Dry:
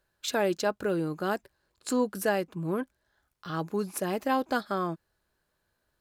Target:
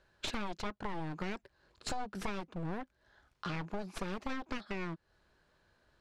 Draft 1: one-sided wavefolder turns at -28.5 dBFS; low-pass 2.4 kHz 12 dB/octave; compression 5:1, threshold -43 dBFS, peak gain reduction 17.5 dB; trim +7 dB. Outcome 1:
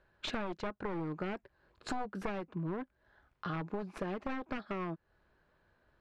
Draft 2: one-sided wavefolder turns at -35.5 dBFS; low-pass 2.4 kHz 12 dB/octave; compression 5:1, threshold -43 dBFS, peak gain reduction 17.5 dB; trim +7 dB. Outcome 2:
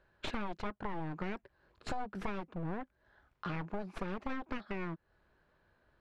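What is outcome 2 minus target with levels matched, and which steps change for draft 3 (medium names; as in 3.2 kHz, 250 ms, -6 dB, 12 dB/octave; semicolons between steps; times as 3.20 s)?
4 kHz band -5.0 dB
change: low-pass 5.1 kHz 12 dB/octave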